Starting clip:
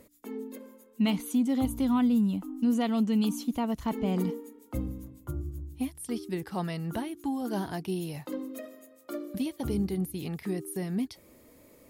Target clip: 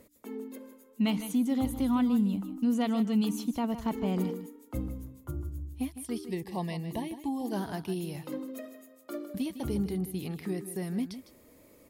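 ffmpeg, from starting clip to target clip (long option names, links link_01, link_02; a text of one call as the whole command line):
ffmpeg -i in.wav -filter_complex "[0:a]acrossover=split=3700[link_01][link_02];[link_02]asoftclip=type=hard:threshold=-35.5dB[link_03];[link_01][link_03]amix=inputs=2:normalize=0,asettb=1/sr,asplit=3[link_04][link_05][link_06];[link_04]atrim=end=6.284[link_07];[link_05]atrim=start=6.28:end=7.52,asetpts=PTS-STARTPTS,afade=type=in:duration=0.004:curve=qsin,afade=type=out:start_time=1.236:duration=0.004:curve=qsin,asuperstop=centerf=1400:order=8:qfactor=2.4[link_08];[link_06]atrim=start=7.516[link_09];[link_07][link_08]acrossfade=duration=0.004:curve1=hsin:curve2=qsin[link_10];[link_10][link_09]acrossfade=duration=0.004:curve1=qsin:curve2=hsin,aecho=1:1:156:0.251,volume=-1.5dB" out.wav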